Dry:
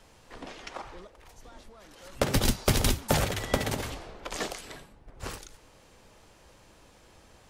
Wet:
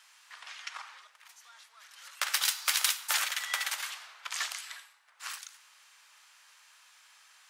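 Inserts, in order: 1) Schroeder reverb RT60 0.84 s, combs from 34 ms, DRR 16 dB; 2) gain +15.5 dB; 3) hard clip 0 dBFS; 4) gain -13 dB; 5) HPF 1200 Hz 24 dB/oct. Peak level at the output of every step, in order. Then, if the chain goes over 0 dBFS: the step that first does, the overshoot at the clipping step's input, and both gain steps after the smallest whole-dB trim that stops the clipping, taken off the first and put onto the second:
-10.0, +5.5, 0.0, -13.0, -8.0 dBFS; step 2, 5.5 dB; step 2 +9.5 dB, step 4 -7 dB

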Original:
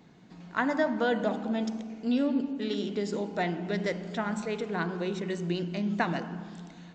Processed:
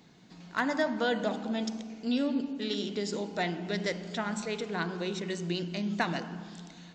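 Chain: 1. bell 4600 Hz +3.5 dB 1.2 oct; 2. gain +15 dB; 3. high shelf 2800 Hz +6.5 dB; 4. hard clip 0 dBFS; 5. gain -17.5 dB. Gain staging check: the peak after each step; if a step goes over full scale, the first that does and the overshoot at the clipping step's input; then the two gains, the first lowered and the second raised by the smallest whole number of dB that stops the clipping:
-12.0, +3.0, +4.5, 0.0, -17.5 dBFS; step 2, 4.5 dB; step 2 +10 dB, step 5 -12.5 dB

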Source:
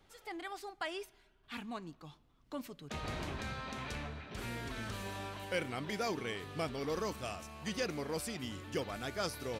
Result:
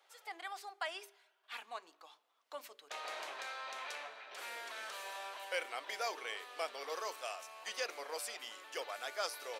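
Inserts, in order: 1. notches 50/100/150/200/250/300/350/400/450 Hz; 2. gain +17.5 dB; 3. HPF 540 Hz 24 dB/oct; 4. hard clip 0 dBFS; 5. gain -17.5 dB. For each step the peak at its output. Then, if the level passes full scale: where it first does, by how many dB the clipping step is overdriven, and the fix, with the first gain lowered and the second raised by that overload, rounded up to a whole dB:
-23.5, -6.0, -5.0, -5.0, -22.5 dBFS; no overload

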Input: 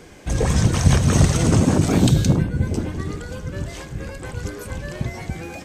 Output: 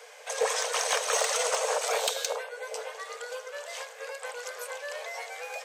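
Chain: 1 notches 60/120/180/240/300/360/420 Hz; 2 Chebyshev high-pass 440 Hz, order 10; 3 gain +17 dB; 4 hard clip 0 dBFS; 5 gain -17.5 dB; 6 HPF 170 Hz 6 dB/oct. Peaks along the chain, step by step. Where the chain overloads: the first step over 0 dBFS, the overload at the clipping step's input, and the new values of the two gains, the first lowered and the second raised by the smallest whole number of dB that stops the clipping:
-2.0, -8.5, +8.5, 0.0, -17.5, -16.0 dBFS; step 3, 8.5 dB; step 3 +8 dB, step 5 -8.5 dB

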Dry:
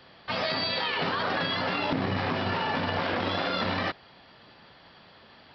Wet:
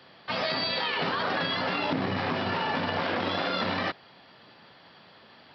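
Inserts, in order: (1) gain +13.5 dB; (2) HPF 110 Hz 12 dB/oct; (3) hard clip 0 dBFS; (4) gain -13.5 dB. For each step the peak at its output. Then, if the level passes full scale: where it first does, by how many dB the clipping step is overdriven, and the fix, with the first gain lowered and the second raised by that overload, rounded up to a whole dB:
-2.0, -2.0, -2.0, -15.5 dBFS; no overload

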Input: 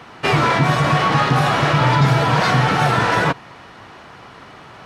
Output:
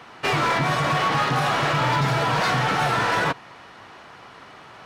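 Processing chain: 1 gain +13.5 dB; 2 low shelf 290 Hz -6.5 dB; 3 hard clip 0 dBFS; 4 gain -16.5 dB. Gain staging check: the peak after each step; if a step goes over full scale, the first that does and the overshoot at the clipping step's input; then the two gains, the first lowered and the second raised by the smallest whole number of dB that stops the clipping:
+9.0, +8.0, 0.0, -16.5 dBFS; step 1, 8.0 dB; step 1 +5.5 dB, step 4 -8.5 dB

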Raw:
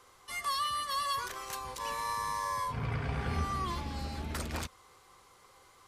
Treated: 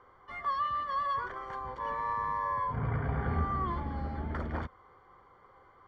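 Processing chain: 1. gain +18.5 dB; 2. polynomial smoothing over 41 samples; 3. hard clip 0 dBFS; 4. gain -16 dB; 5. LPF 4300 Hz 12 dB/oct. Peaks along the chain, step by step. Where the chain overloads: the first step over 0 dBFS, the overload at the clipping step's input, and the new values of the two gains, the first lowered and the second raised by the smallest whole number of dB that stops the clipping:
-2.0, -2.5, -2.5, -18.5, -18.5 dBFS; no overload

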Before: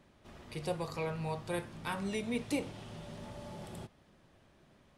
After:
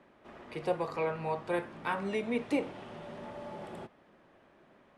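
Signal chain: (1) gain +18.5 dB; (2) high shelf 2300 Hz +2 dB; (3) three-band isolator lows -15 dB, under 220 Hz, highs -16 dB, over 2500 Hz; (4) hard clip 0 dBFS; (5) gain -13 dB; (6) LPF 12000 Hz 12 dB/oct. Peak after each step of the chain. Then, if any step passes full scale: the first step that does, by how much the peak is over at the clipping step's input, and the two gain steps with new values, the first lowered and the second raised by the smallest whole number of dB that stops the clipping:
-4.0, -4.0, -5.5, -5.5, -18.5, -18.5 dBFS; no overload

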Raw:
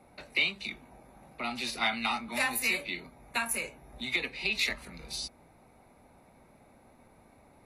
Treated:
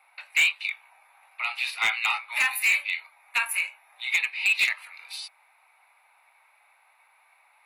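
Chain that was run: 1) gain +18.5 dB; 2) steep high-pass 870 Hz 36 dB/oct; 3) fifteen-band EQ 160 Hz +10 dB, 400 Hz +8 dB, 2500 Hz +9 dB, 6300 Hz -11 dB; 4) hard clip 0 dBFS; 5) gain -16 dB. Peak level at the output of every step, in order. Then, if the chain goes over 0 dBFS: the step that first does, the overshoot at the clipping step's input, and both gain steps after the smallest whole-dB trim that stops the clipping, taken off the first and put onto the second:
+4.0, +4.0, +9.5, 0.0, -16.0 dBFS; step 1, 9.5 dB; step 1 +8.5 dB, step 5 -6 dB

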